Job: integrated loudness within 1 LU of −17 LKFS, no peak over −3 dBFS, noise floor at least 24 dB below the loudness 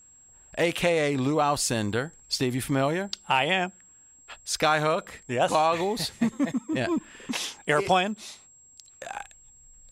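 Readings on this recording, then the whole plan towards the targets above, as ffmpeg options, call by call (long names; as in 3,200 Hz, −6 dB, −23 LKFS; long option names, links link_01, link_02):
interfering tone 7,600 Hz; level of the tone −52 dBFS; integrated loudness −26.0 LKFS; sample peak −9.5 dBFS; target loudness −17.0 LKFS
→ -af "bandreject=frequency=7600:width=30"
-af "volume=9dB,alimiter=limit=-3dB:level=0:latency=1"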